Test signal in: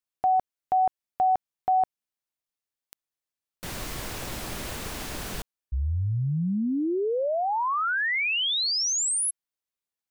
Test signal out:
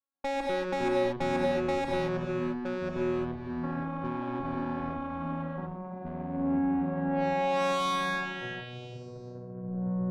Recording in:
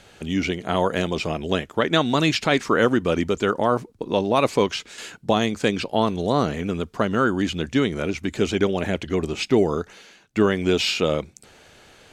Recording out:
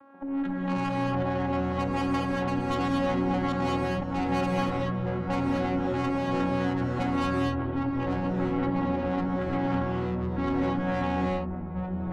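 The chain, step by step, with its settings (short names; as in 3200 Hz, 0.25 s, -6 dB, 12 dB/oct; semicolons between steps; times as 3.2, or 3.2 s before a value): in parallel at +2.5 dB: compressor 12:1, threshold -30 dBFS; on the sum: vocoder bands 8, saw 275 Hz; synth low-pass 1200 Hz, resonance Q 4.1; tube stage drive 22 dB, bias 0.55; non-linear reverb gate 0.26 s rising, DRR -1 dB; echoes that change speed 0.128 s, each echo -7 st, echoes 3; gain -6 dB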